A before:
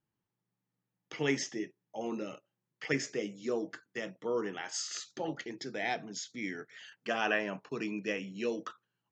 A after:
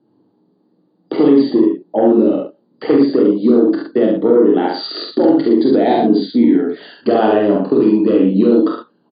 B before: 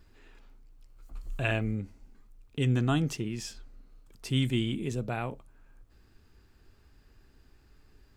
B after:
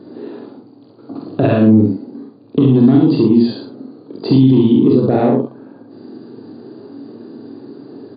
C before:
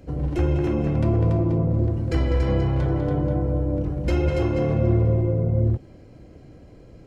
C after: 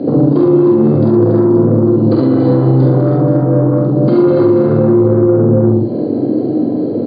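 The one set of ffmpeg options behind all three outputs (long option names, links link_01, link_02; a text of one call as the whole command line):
ffmpeg -i in.wav -filter_complex "[0:a]firequalizer=gain_entry='entry(140,0);entry(310,15);entry(1300,-3);entry(3100,-21)':delay=0.05:min_phase=1,aexciter=amount=15.5:drive=4:freq=3500,acompressor=threshold=-22dB:ratio=2.5,aresample=16000,aeval=exprs='0.282*sin(PI/2*1.41*val(0)/0.282)':channel_layout=same,aresample=44100,equalizer=frequency=240:width=2.2:gain=7.5,acrossover=split=130|3000[link_01][link_02][link_03];[link_02]acompressor=threshold=-21dB:ratio=6[link_04];[link_01][link_04][link_03]amix=inputs=3:normalize=0,asplit=2[link_05][link_06];[link_06]adelay=46,volume=-3dB[link_07];[link_05][link_07]amix=inputs=2:normalize=0,aecho=1:1:29|68:0.398|0.668,afftfilt=real='re*between(b*sr/4096,100,4800)':imag='im*between(b*sr/4096,100,4800)':win_size=4096:overlap=0.75,alimiter=level_in=10.5dB:limit=-1dB:release=50:level=0:latency=1,volume=-1dB" out.wav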